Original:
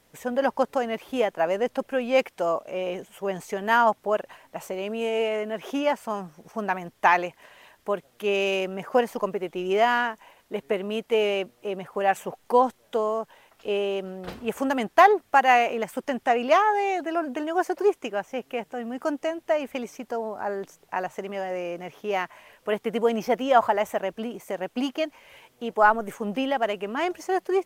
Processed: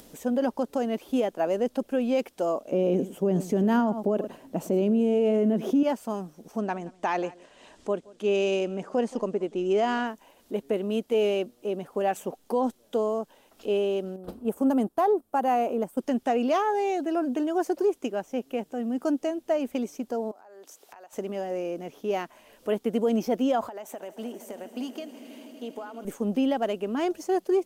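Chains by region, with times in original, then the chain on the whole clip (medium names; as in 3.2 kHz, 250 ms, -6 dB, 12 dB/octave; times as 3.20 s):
2.72–5.83 s: peaking EQ 190 Hz +14.5 dB 2.8 oct + delay 105 ms -18 dB
6.58–10.07 s: Chebyshev low-pass 8.1 kHz, order 3 + delay 174 ms -23.5 dB
14.16–15.98 s: gate -36 dBFS, range -6 dB + high-order bell 3.4 kHz -9 dB 2.4 oct
20.31–21.13 s: high-pass 630 Hz + compression, threshold -46 dBFS
23.68–26.05 s: high-pass 550 Hz 6 dB/octave + compression 12:1, threshold -31 dBFS + echo with a slow build-up 80 ms, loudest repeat 5, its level -18 dB
whole clip: ten-band graphic EQ 125 Hz -7 dB, 250 Hz +7 dB, 1 kHz -5 dB, 2 kHz -9 dB; upward compressor, threshold -41 dBFS; peak limiter -16 dBFS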